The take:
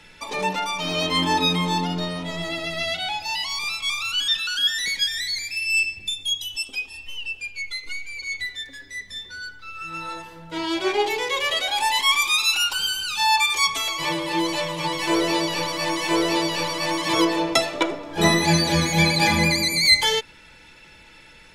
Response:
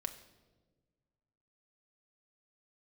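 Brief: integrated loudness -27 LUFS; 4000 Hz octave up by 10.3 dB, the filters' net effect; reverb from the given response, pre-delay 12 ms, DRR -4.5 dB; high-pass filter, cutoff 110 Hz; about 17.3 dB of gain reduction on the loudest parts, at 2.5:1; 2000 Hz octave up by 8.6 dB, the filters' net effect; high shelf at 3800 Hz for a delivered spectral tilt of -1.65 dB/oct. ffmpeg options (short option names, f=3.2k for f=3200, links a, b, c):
-filter_complex "[0:a]highpass=110,equalizer=f=2k:t=o:g=6.5,highshelf=f=3.8k:g=4,equalizer=f=4k:t=o:g=8,acompressor=threshold=-28dB:ratio=2.5,asplit=2[a][b];[1:a]atrim=start_sample=2205,adelay=12[c];[b][c]afir=irnorm=-1:irlink=0,volume=5dB[d];[a][d]amix=inputs=2:normalize=0,volume=-8dB"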